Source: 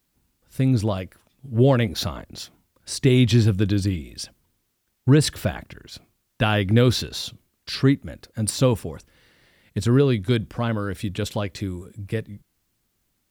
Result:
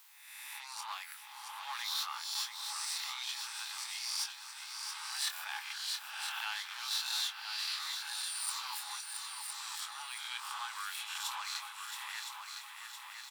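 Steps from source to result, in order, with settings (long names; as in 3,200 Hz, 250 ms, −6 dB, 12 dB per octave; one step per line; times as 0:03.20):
peak hold with a rise ahead of every peak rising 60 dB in 0.74 s
high-shelf EQ 10,000 Hz +5.5 dB
reversed playback
downward compressor 4 to 1, threshold −28 dBFS, peak gain reduction 15 dB
reversed playback
asymmetric clip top −33.5 dBFS
Chebyshev high-pass with heavy ripple 820 Hz, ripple 3 dB
double-tracking delay 24 ms −8.5 dB
on a send: echo machine with several playback heads 337 ms, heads second and third, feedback 46%, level −9 dB
on the sum: multiband upward and downward compressor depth 40%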